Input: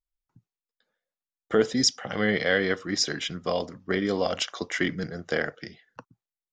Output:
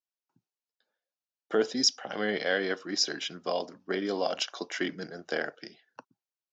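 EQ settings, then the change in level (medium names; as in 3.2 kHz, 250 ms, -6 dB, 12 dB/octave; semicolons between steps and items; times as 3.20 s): cabinet simulation 330–6300 Hz, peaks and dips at 490 Hz -5 dB, 1.2 kHz -6 dB, 2 kHz -9 dB, 3.4 kHz -4 dB; 0.0 dB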